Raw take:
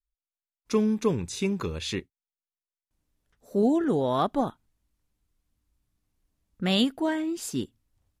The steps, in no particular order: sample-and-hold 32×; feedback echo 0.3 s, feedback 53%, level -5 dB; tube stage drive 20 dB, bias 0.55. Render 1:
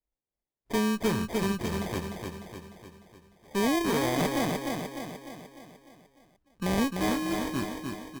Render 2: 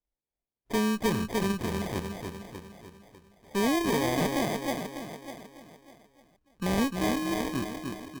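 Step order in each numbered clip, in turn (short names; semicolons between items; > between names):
sample-and-hold > feedback echo > tube stage; feedback echo > sample-and-hold > tube stage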